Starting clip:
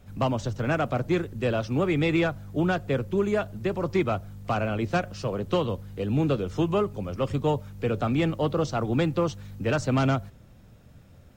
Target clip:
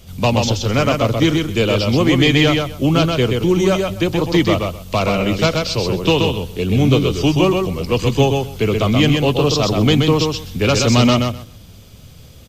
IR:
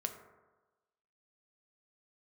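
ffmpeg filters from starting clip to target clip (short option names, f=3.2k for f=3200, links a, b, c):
-af "asetrate=40131,aresample=44100,highshelf=f=2.4k:t=q:w=1.5:g=9,aecho=1:1:128|256|384:0.631|0.101|0.0162,volume=9dB"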